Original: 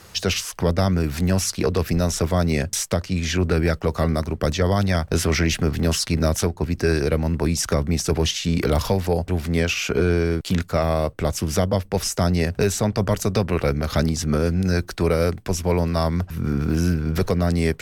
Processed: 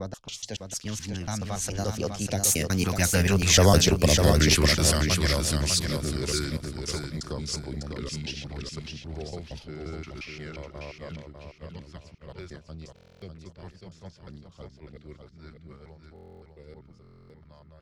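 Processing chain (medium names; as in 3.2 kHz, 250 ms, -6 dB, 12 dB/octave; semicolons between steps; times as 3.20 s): slices played last to first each 159 ms, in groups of 5; Doppler pass-by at 3.74 s, 38 m/s, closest 21 m; treble shelf 3.6 kHz +11.5 dB; level-controlled noise filter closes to 2.4 kHz, open at -23.5 dBFS; gate -44 dBFS, range -7 dB; LFO notch saw down 0.56 Hz 210–2700 Hz; feedback delay 600 ms, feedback 32%, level -5.5 dB; buffer glitch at 12.94/16.14/17.02 s, samples 1024, times 11; trim +2 dB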